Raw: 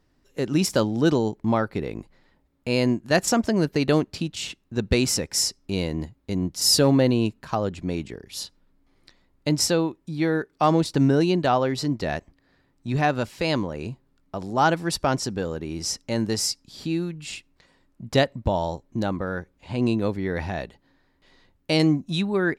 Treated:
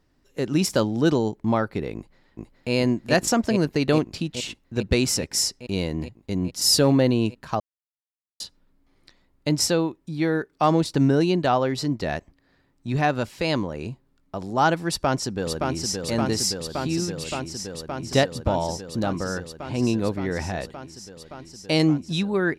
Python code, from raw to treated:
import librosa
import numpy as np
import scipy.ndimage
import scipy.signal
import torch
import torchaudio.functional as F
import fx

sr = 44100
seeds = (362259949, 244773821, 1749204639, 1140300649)

y = fx.echo_throw(x, sr, start_s=1.95, length_s=0.77, ms=420, feedback_pct=80, wet_db=-1.0)
y = fx.echo_throw(y, sr, start_s=14.89, length_s=1.09, ms=570, feedback_pct=85, wet_db=-4.0)
y = fx.edit(y, sr, fx.silence(start_s=7.6, length_s=0.8), tone=tone)